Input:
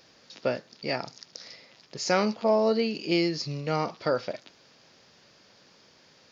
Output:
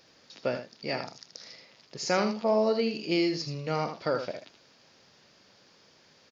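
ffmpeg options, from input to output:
-af "aecho=1:1:79:0.376,volume=0.75"

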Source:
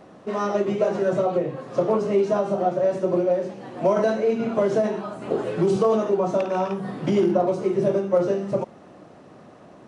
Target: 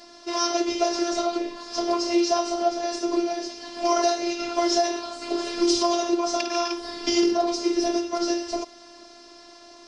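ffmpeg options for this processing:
-af "lowpass=f=5100:t=q:w=5.5,crystalizer=i=6:c=0,afftfilt=real='hypot(re,im)*cos(PI*b)':imag='0':win_size=512:overlap=0.75"

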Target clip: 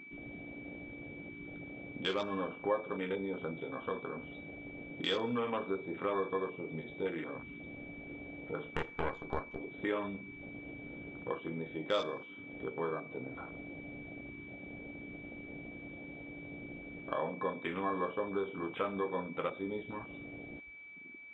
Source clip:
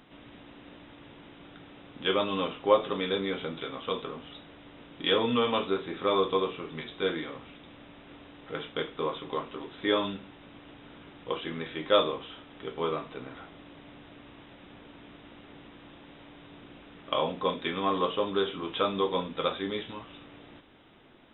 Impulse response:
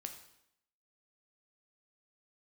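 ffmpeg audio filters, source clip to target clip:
-filter_complex "[0:a]asettb=1/sr,asplit=3[s0][s1][s2];[s0]atrim=end=8.724[s3];[s1]atrim=start=8.72:end=9.59,asetpts=PTS-STARTPTS,afade=t=in:d=0.004:c=qsin,afade=t=out:st=0.866:d=0.004:c=qsin,aeval=exprs='0.141*(cos(1*acos(clip(val(0)/0.141,-1,1)))-cos(1*PI/2))+0.0708*(cos(4*acos(clip(val(0)/0.141,-1,1)))-cos(4*PI/2))':c=same[s4];[s2]atrim=start=9.586[s5];[s3][s4]acrossfade=d=0.004:c1=hsin:c2=qsin[s6];[s6][s5]acrossfade=d=0.004:c1=qsin:c2=hsin,acompressor=threshold=0.00631:ratio=2,afwtdn=0.00631,aeval=exprs='val(0)+0.00224*sin(2*PI*2300*n/s)':c=same,asplit=2[s7][s8];[1:a]atrim=start_sample=2205[s9];[s8][s9]afir=irnorm=-1:irlink=0,volume=0.376[s10];[s7][s10]amix=inputs=2:normalize=0,volume=1.26"

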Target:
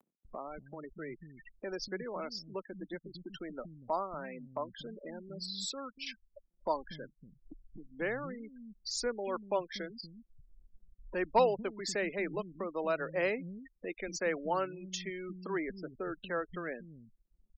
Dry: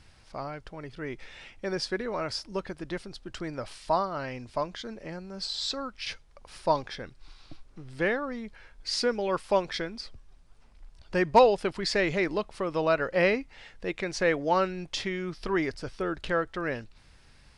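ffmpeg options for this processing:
-filter_complex "[0:a]afftfilt=real='re*gte(hypot(re,im),0.0224)':imag='im*gte(hypot(re,im),0.0224)':win_size=1024:overlap=0.75,lowshelf=f=130:t=q:w=1.5:g=-11,acrossover=split=480[s0][s1];[s1]aexciter=amount=8:drive=7.5:freq=7100[s2];[s0][s2]amix=inputs=2:normalize=0,acompressor=mode=upward:threshold=0.0398:ratio=2.5,acrossover=split=210[s3][s4];[s3]adelay=240[s5];[s5][s4]amix=inputs=2:normalize=0,volume=0.398"

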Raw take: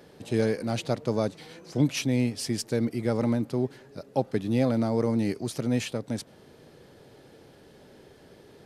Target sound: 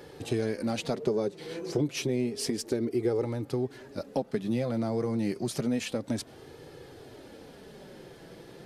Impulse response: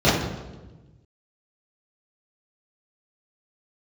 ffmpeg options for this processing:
-filter_complex "[0:a]asettb=1/sr,asplit=3[s0][s1][s2];[s0]atrim=end=0.944[s3];[s1]atrim=start=0.94:end=3.25,asetpts=PTS-STARTPTS,afade=t=in:d=0.004:c=qsin,afade=t=out:st=2.306:d=0.004:c=qsin,equalizer=f=400:t=o:w=0.47:g=14[s4];[s2]atrim=start=3.246[s5];[s3][s4]acrossfade=d=0.004:c1=hsin:c2=qsin[s6];[s6][s5]acrossfade=d=0.004:c1=qsin:c2=hsin,acompressor=threshold=0.0282:ratio=4,flanger=delay=2.3:depth=3.7:regen=-34:speed=0.3:shape=sinusoidal,volume=2.51"

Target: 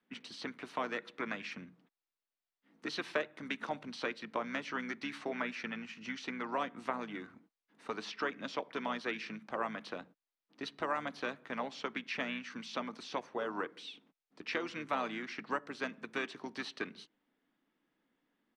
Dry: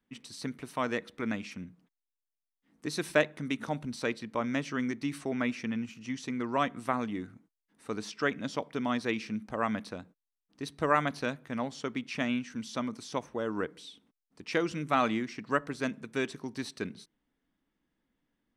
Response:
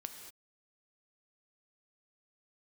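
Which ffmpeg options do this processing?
-filter_complex "[0:a]acrossover=split=600|5700[s0][s1][s2];[s0]acompressor=threshold=0.00631:ratio=4[s3];[s1]acompressor=threshold=0.0126:ratio=4[s4];[s2]acompressor=threshold=0.00158:ratio=4[s5];[s3][s4][s5]amix=inputs=3:normalize=0,asplit=2[s6][s7];[s7]asetrate=33038,aresample=44100,atempo=1.33484,volume=0.355[s8];[s6][s8]amix=inputs=2:normalize=0,acrossover=split=200 5000:gain=0.126 1 0.141[s9][s10][s11];[s9][s10][s11]amix=inputs=3:normalize=0,volume=1.33"

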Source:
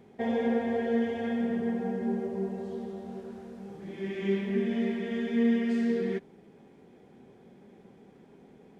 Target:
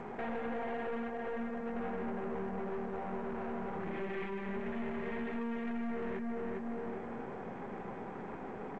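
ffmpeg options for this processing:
-filter_complex "[0:a]asplit=3[s0][s1][s2];[s0]afade=t=out:st=1.08:d=0.02[s3];[s1]agate=range=0.0224:threshold=0.1:ratio=3:detection=peak,afade=t=in:st=1.08:d=0.02,afade=t=out:st=1.75:d=0.02[s4];[s2]afade=t=in:st=1.75:d=0.02[s5];[s3][s4][s5]amix=inputs=3:normalize=0,equalizer=f=1100:t=o:w=1.6:g=12.5,asettb=1/sr,asplit=3[s6][s7][s8];[s6]atrim=end=3.104[s9];[s7]atrim=start=3.1:end=3.76,asetpts=PTS-STARTPTS,afade=t=in:d=0.004:c=qsin,afade=t=out:st=0.656:d=0.004:c=qsin,aeval=exprs='val(0)+0.00251*sin(2*PI*970*n/s)':c=same[s10];[s8]atrim=start=3.756[s11];[s9][s10]acrossfade=d=0.004:c1=hsin:c2=qsin[s12];[s12][s11]acrossfade=d=0.004:c1=qsin:c2=hsin,asplit=3[s13][s14][s15];[s13]afade=t=out:st=4.64:d=0.02[s16];[s14]lowshelf=f=68:g=10,afade=t=in:st=4.64:d=0.02,afade=t=out:st=5.75:d=0.02[s17];[s15]afade=t=in:st=5.75:d=0.02[s18];[s16][s17][s18]amix=inputs=3:normalize=0,asplit=2[s19][s20];[s20]adelay=403,lowpass=f=1700:p=1,volume=0.355,asplit=2[s21][s22];[s22]adelay=403,lowpass=f=1700:p=1,volume=0.3,asplit=2[s23][s24];[s24]adelay=403,lowpass=f=1700:p=1,volume=0.3[s25];[s19][s21][s23][s25]amix=inputs=4:normalize=0,acompressor=threshold=0.00891:ratio=5,aeval=exprs='(tanh(224*val(0)+0.55)-tanh(0.55))/224':c=same,lowpass=f=2600:w=0.5412,lowpass=f=2600:w=1.3066,bandreject=f=50:t=h:w=6,bandreject=f=100:t=h:w=6,bandreject=f=150:t=h:w=6,bandreject=f=200:t=h:w=6,bandreject=f=250:t=h:w=6,bandreject=f=300:t=h:w=6,bandreject=f=350:t=h:w=6,bandreject=f=400:t=h:w=6,bandreject=f=450:t=h:w=6,volume=3.76" -ar 16000 -c:a g722

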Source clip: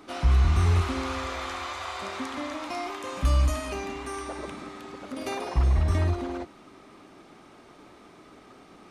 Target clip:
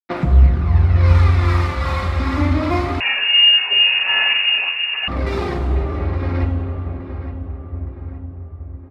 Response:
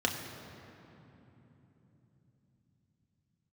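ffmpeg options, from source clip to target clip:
-filter_complex "[0:a]aemphasis=mode=reproduction:type=75fm,agate=range=0.0224:threshold=0.0126:ratio=3:detection=peak,equalizer=f=120:t=o:w=1.3:g=9,acompressor=threshold=0.0398:ratio=12,tremolo=f=2.6:d=0.4,acrusher=bits=5:mix=0:aa=0.5,aphaser=in_gain=1:out_gain=1:delay=3.7:decay=0.59:speed=0.24:type=sinusoidal,asplit=2[s0][s1];[s1]adelay=868,lowpass=f=2000:p=1,volume=0.299,asplit=2[s2][s3];[s3]adelay=868,lowpass=f=2000:p=1,volume=0.49,asplit=2[s4][s5];[s5]adelay=868,lowpass=f=2000:p=1,volume=0.49,asplit=2[s6][s7];[s7]adelay=868,lowpass=f=2000:p=1,volume=0.49,asplit=2[s8][s9];[s9]adelay=868,lowpass=f=2000:p=1,volume=0.49[s10];[s0][s2][s4][s6][s8][s10]amix=inputs=6:normalize=0[s11];[1:a]atrim=start_sample=2205,asetrate=30429,aresample=44100[s12];[s11][s12]afir=irnorm=-1:irlink=0,asettb=1/sr,asplit=3[s13][s14][s15];[s13]atrim=end=3.004[s16];[s14]atrim=start=3:end=5.08,asetpts=PTS-STARTPTS,afade=t=in:d=0.004:c=qsin,afade=t=out:st=2.076:d=0.004:c=qsin,lowpass=f=2500:t=q:w=0.5098,lowpass=f=2500:t=q:w=0.6013,lowpass=f=2500:t=q:w=0.9,lowpass=f=2500:t=q:w=2.563,afreqshift=-2900[s17];[s15]atrim=start=5.076[s18];[s16][s17]acrossfade=d=0.004:c1=hsin:c2=qsin[s19];[s19][s18]acrossfade=d=0.004:c1=qsin:c2=hsin,volume=0.794"

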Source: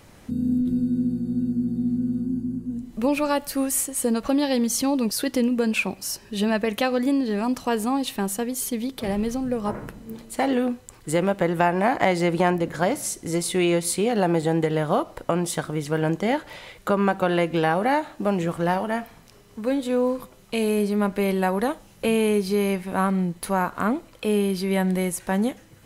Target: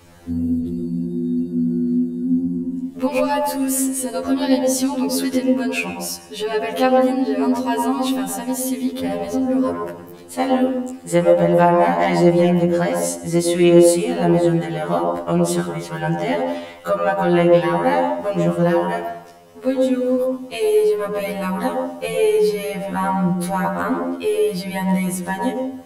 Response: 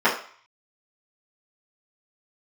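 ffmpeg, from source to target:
-filter_complex "[0:a]acontrast=52,asplit=2[s0][s1];[1:a]atrim=start_sample=2205,asetrate=24696,aresample=44100,adelay=98[s2];[s1][s2]afir=irnorm=-1:irlink=0,volume=0.0473[s3];[s0][s3]amix=inputs=2:normalize=0,afftfilt=real='re*2*eq(mod(b,4),0)':imag='im*2*eq(mod(b,4),0)':win_size=2048:overlap=0.75,volume=0.841"

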